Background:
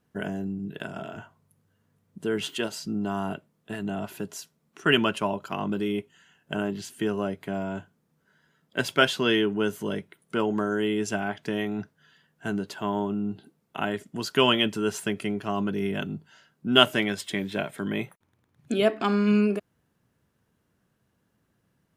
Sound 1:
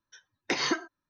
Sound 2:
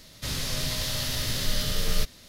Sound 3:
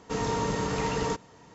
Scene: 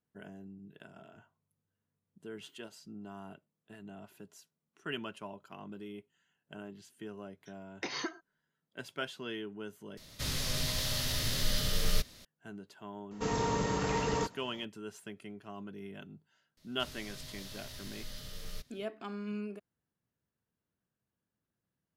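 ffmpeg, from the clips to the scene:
-filter_complex "[2:a]asplit=2[a][b];[0:a]volume=-17.5dB,asplit=2[c][d];[c]atrim=end=9.974[e];[a]atrim=end=2.28,asetpts=PTS-STARTPTS,volume=-4dB[f];[d]atrim=start=12.246[g];[1:a]atrim=end=1.09,asetpts=PTS-STARTPTS,volume=-9.5dB,afade=t=in:d=0.004:c=hsin,afade=t=out:st=1.086:d=0.004:c=hsin,adelay=7330[h];[3:a]atrim=end=1.54,asetpts=PTS-STARTPTS,volume=-3dB,afade=t=in:d=0.004:c=hsin,afade=t=out:st=1.536:d=0.004:c=hsin,adelay=13110[i];[b]atrim=end=2.28,asetpts=PTS-STARTPTS,volume=-18dB,afade=t=in:d=0.004:c=hsin,afade=t=out:st=2.276:d=0.004:c=hsin,adelay=16570[j];[e][f]acrossfade=d=0.004:c1=hsin:c2=hsin[k];[k][g]acrossfade=d=0.004:c1=hsin:c2=hsin[l];[l][h][i][j]amix=inputs=4:normalize=0"

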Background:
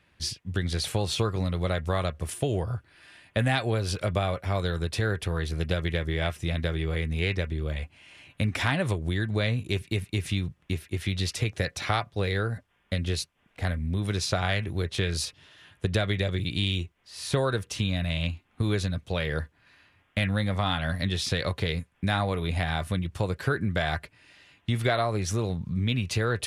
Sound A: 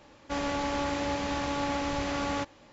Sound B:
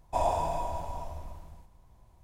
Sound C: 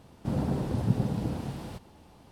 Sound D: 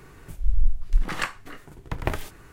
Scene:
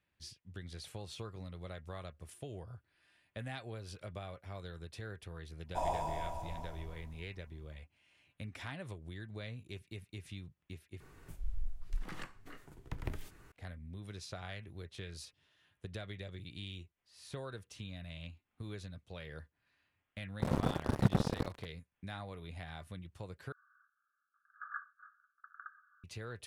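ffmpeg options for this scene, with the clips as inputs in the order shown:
-filter_complex "[4:a]asplit=2[a][b];[0:a]volume=-18.5dB[c];[a]acrossover=split=390|1200[d][e][f];[d]acompressor=threshold=-21dB:ratio=4[g];[e]acompressor=threshold=-46dB:ratio=4[h];[f]acompressor=threshold=-40dB:ratio=4[i];[g][h][i]amix=inputs=3:normalize=0[j];[3:a]acrusher=bits=3:mix=0:aa=0.5[k];[b]asuperpass=centerf=1400:order=20:qfactor=2.6[l];[c]asplit=3[m][n][o];[m]atrim=end=11.004[p];[j]atrim=end=2.52,asetpts=PTS-STARTPTS,volume=-10dB[q];[n]atrim=start=13.516:end=23.524[r];[l]atrim=end=2.52,asetpts=PTS-STARTPTS,volume=-9.5dB[s];[o]atrim=start=26.036[t];[2:a]atrim=end=2.23,asetpts=PTS-STARTPTS,volume=-7.5dB,afade=t=in:d=0.1,afade=t=out:st=2.13:d=0.1,adelay=5620[u];[k]atrim=end=2.31,asetpts=PTS-STARTPTS,volume=-3dB,afade=t=in:d=0.004:c=hsin,afade=t=out:st=2.306:d=0.004:c=hsin,adelay=20150[v];[p][q]acrossfade=d=0.004:c1=hsin:c2=hsin[w];[w][r]acrossfade=d=0.004:c1=hsin:c2=hsin[x];[x][s]acrossfade=d=0.004:c1=hsin:c2=hsin[y];[y][t]acrossfade=d=0.004:c1=hsin:c2=hsin[z];[z][u][v]amix=inputs=3:normalize=0"

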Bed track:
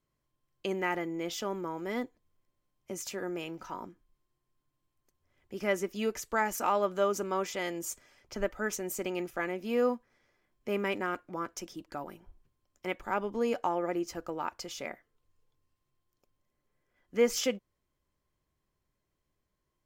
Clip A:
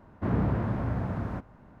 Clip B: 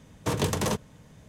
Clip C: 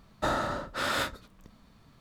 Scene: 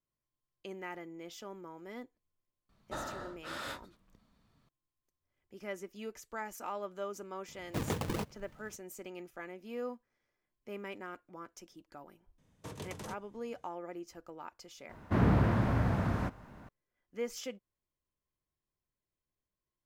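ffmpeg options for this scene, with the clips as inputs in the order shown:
-filter_complex "[2:a]asplit=2[a][b];[0:a]volume=-11.5dB[c];[a]acrusher=samples=37:mix=1:aa=0.000001:lfo=1:lforange=59.2:lforate=3.6[d];[1:a]highshelf=f=2.2k:g=11.5[e];[3:a]atrim=end=2,asetpts=PTS-STARTPTS,volume=-12dB,afade=t=in:d=0.004:c=hsin,afade=t=out:st=1.996:d=0.004:c=hsin,adelay=2690[f];[d]atrim=end=1.28,asetpts=PTS-STARTPTS,volume=-8.5dB,afade=t=in:d=0.004:c=hsin,afade=t=out:st=1.276:d=0.004:c=hsin,adelay=7480[g];[b]atrim=end=1.28,asetpts=PTS-STARTPTS,volume=-18dB,afade=t=in:d=0.004:c=hsin,afade=t=out:st=1.276:d=0.004:c=hsin,adelay=12380[h];[e]atrim=end=1.8,asetpts=PTS-STARTPTS,afade=t=in:d=0.004:c=hsin,afade=t=out:st=1.796:d=0.004:c=hsin,adelay=14890[i];[c][f][g][h][i]amix=inputs=5:normalize=0"

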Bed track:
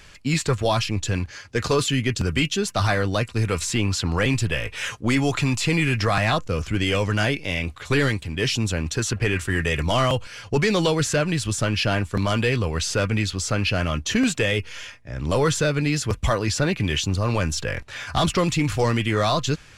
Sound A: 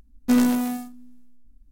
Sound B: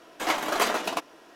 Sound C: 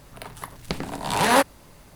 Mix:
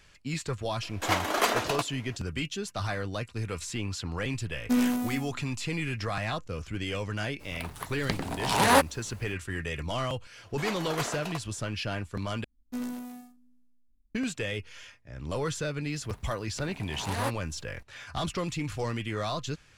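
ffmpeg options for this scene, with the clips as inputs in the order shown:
-filter_complex "[2:a]asplit=2[a][b];[1:a]asplit=2[c][d];[3:a]asplit=2[e][f];[0:a]volume=-11dB,asplit=2[g][h];[g]atrim=end=12.444[i];[d]atrim=end=1.71,asetpts=PTS-STARTPTS,volume=-16.5dB[j];[h]atrim=start=14.146[k];[a]atrim=end=1.35,asetpts=PTS-STARTPTS,volume=-1dB,afade=t=in:d=0.004:c=hsin,afade=t=out:st=1.346:d=0.004:c=hsin,adelay=820[l];[c]atrim=end=1.71,asetpts=PTS-STARTPTS,volume=-6.5dB,afade=t=in:d=0.004:c=hsin,afade=t=out:st=1.706:d=0.004:c=hsin,adelay=194481S[m];[e]atrim=end=1.95,asetpts=PTS-STARTPTS,volume=-2.5dB,afade=t=in:d=0.02,afade=t=out:st=1.93:d=0.02,adelay=7390[n];[b]atrim=end=1.35,asetpts=PTS-STARTPTS,volume=-9.5dB,afade=t=in:d=0.004:c=hsin,afade=t=out:st=1.346:d=0.004:c=hsin,adelay=10380[o];[f]atrim=end=1.95,asetpts=PTS-STARTPTS,volume=-14.5dB,afade=t=in:d=0.004:c=hsin,afade=t=out:st=1.946:d=0.004:c=hsin,adelay=700308S[p];[i][j]acrossfade=d=0.004:c1=hsin:c2=hsin[q];[q][k]acrossfade=d=0.004:c1=hsin:c2=hsin[r];[r][l][m][n][o][p]amix=inputs=6:normalize=0"

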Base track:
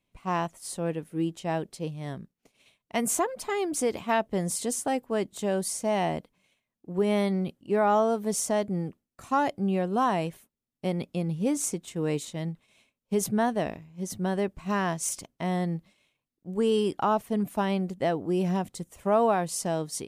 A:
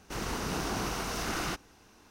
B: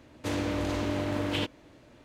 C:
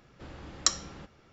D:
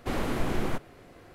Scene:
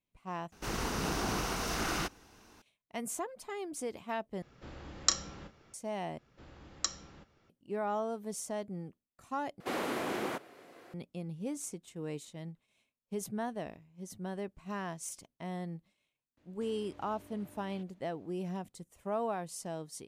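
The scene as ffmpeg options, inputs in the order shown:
-filter_complex "[3:a]asplit=2[a][b];[0:a]volume=-11.5dB[c];[a]asplit=2[d][e];[e]adelay=31,volume=-10dB[f];[d][f]amix=inputs=2:normalize=0[g];[4:a]highpass=300[h];[2:a]acompressor=threshold=-37dB:ratio=6:attack=3.2:release=140:knee=1:detection=peak[i];[c]asplit=5[j][k][l][m][n];[j]atrim=end=0.524[o];[1:a]atrim=end=2.1,asetpts=PTS-STARTPTS,volume=-0.5dB[p];[k]atrim=start=2.616:end=4.424[q];[g]atrim=end=1.32,asetpts=PTS-STARTPTS,volume=-2.5dB[r];[l]atrim=start=5.736:end=6.184[s];[b]atrim=end=1.32,asetpts=PTS-STARTPTS,volume=-8.5dB[t];[m]atrim=start=7.496:end=9.604[u];[h]atrim=end=1.34,asetpts=PTS-STARTPTS,volume=-1.5dB[v];[n]atrim=start=10.936[w];[i]atrim=end=2.04,asetpts=PTS-STARTPTS,volume=-16dB,afade=t=in:d=0.004:c=hsin,afade=t=out:st=2.036:d=0.004:c=hsin,adelay=16370[x];[o][p]acrossfade=d=0.004:c1=hsin:c2=hsin[y];[y][q]acrossfade=d=0.004:c1=hsin:c2=hsin[z];[z][r]acrossfade=d=0.004:c1=hsin:c2=hsin[aa];[aa][s]acrossfade=d=0.004:c1=hsin:c2=hsin[ab];[ab][t]acrossfade=d=0.004:c1=hsin:c2=hsin[ac];[ac][u]acrossfade=d=0.004:c1=hsin:c2=hsin[ad];[ad][v]acrossfade=d=0.004:c1=hsin:c2=hsin[ae];[ae][w]acrossfade=d=0.004:c1=hsin:c2=hsin[af];[af][x]amix=inputs=2:normalize=0"

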